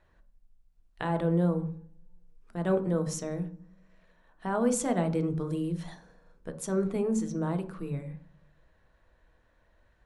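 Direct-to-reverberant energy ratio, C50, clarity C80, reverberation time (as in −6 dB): 7.0 dB, 13.0 dB, 16.5 dB, 0.50 s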